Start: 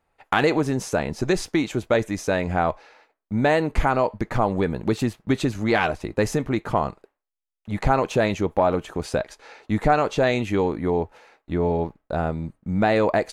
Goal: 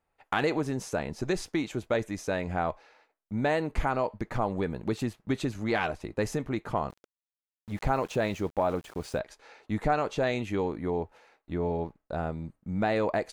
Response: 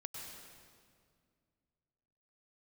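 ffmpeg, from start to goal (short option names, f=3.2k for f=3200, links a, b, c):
-filter_complex "[0:a]asplit=3[a][b][c];[a]afade=t=out:st=6.89:d=0.02[d];[b]aeval=exprs='val(0)*gte(abs(val(0)),0.00944)':c=same,afade=t=in:st=6.89:d=0.02,afade=t=out:st=9.18:d=0.02[e];[c]afade=t=in:st=9.18:d=0.02[f];[d][e][f]amix=inputs=3:normalize=0,volume=-7.5dB"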